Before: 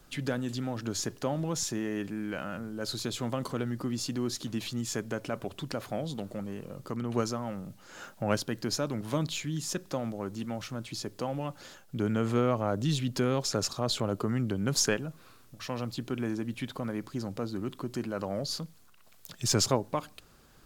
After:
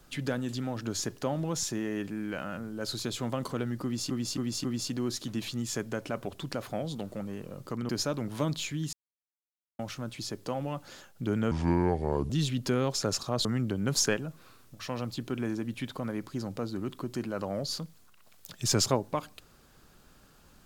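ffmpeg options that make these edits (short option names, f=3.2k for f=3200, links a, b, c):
-filter_complex "[0:a]asplit=10[a][b][c][d][e][f][g][h][i][j];[a]atrim=end=4.102[k];[b]atrim=start=3.828:end=4.102[l];[c]atrim=start=3.828:end=4.102[m];[d]atrim=start=3.828:end=7.082[n];[e]atrim=start=8.618:end=9.66,asetpts=PTS-STARTPTS,afade=t=out:st=1.038:d=0.004:c=hsin[o];[f]atrim=start=9.66:end=10.52,asetpts=PTS-STARTPTS,volume=0[p];[g]atrim=start=10.52:end=12.244,asetpts=PTS-STARTPTS,afade=t=in:d=0.004:c=hsin[q];[h]atrim=start=12.24:end=12.8,asetpts=PTS-STARTPTS,asetrate=31311,aresample=44100,atrim=end_sample=34783,asetpts=PTS-STARTPTS[r];[i]atrim=start=12.796:end=13.952[s];[j]atrim=start=14.248[t];[k][l]acrossfade=d=0.004:c1=hsin:c2=hsin[u];[u][m]acrossfade=d=0.004:c1=hsin:c2=hsin[v];[v][n]acrossfade=d=0.004:c1=hsin:c2=hsin[w];[o][p][q]concat=n=3:v=0:a=1[x];[w][x]acrossfade=d=0.004:c1=hsin:c2=hsin[y];[y][r]acrossfade=d=0.004:c1=hsin:c2=hsin[z];[z][s]acrossfade=d=0.004:c1=hsin:c2=hsin[aa];[aa][t]acrossfade=d=0.004:c1=hsin:c2=hsin"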